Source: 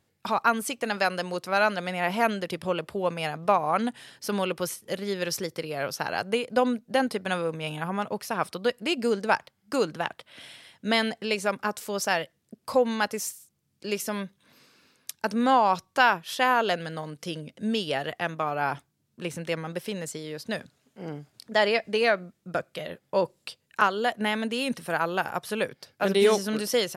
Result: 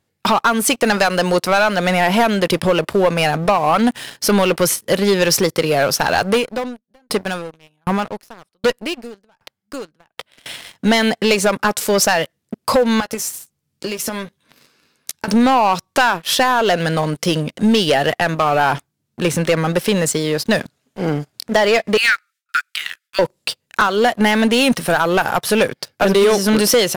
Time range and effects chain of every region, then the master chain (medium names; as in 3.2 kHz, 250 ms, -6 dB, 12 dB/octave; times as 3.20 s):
6.33–10.46 s: valve stage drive 24 dB, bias 0.35 + sawtooth tremolo in dB decaying 1.3 Hz, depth 33 dB
13.00–15.28 s: compression 12:1, threshold -37 dBFS + doubling 13 ms -8 dB
21.97–23.19 s: steep high-pass 1.3 kHz 72 dB/octave + gate with hold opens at -59 dBFS, closes at -69 dBFS
whole clip: compression 6:1, threshold -25 dBFS; waveshaping leveller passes 3; trim +6.5 dB